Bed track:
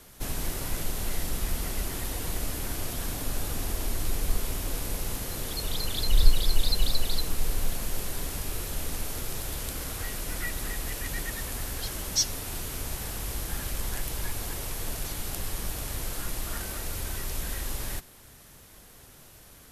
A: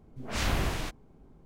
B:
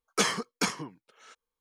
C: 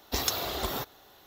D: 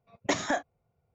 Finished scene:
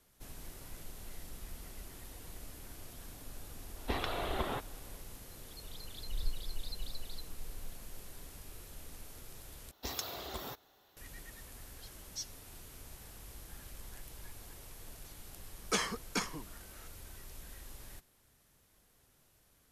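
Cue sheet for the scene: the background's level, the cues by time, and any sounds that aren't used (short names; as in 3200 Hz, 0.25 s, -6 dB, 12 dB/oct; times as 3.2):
bed track -17 dB
3.76 add C -2.5 dB + LPF 3100 Hz 24 dB/oct
9.71 replace with C -10.5 dB
15.54 add B -6.5 dB
not used: A, D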